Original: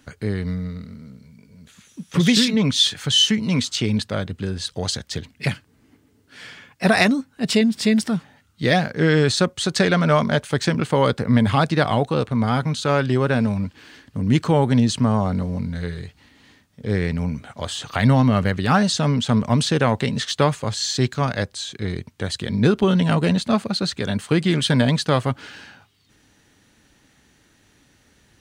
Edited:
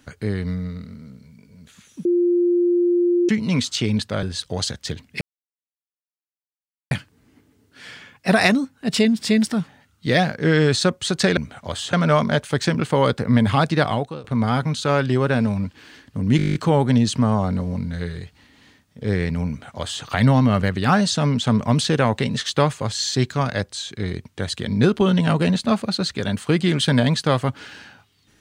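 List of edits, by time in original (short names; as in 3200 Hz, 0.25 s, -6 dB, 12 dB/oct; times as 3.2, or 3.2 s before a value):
2.05–3.29 bleep 350 Hz -14.5 dBFS
4.23–4.49 cut
5.47 insert silence 1.70 s
11.84–12.24 fade out, to -22.5 dB
14.37 stutter 0.02 s, 10 plays
17.3–17.86 copy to 9.93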